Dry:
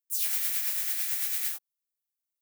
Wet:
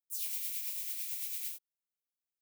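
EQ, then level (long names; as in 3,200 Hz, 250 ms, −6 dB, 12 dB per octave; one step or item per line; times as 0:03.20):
flat-topped bell 1,100 Hz −14.5 dB
−8.5 dB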